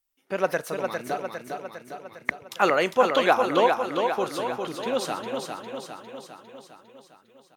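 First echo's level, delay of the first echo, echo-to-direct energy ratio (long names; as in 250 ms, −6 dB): −5.0 dB, 404 ms, −3.0 dB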